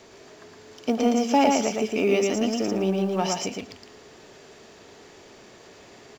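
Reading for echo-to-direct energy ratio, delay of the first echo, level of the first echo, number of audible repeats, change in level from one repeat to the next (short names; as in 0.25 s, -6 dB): -3.0 dB, 0.114 s, -3.0 dB, 2, -16.0 dB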